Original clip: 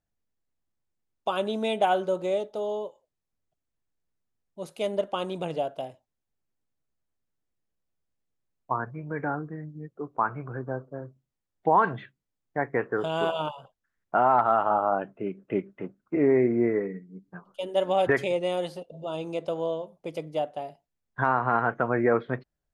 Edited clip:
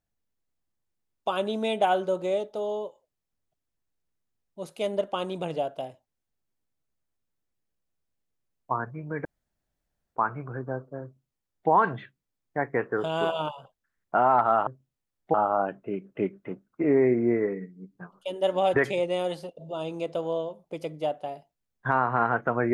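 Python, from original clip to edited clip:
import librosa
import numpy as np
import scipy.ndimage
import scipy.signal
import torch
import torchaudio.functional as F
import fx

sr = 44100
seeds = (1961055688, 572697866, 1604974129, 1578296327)

y = fx.edit(x, sr, fx.room_tone_fill(start_s=9.25, length_s=0.91),
    fx.duplicate(start_s=11.03, length_s=0.67, to_s=14.67), tone=tone)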